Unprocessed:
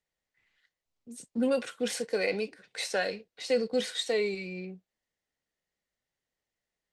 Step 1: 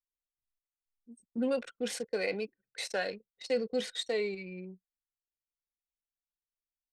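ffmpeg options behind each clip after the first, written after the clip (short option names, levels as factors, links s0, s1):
-af "anlmdn=1,volume=0.668"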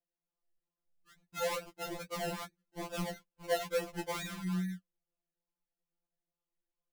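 -af "asubboost=boost=5:cutoff=240,acrusher=samples=30:mix=1:aa=0.000001:lfo=1:lforange=18:lforate=2.3,afftfilt=real='re*2.83*eq(mod(b,8),0)':imag='im*2.83*eq(mod(b,8),0)':win_size=2048:overlap=0.75"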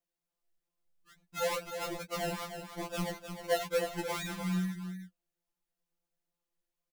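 -af "aecho=1:1:307:0.376,volume=1.26"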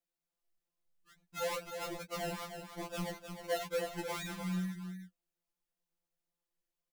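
-af "asoftclip=type=tanh:threshold=0.075,volume=0.708"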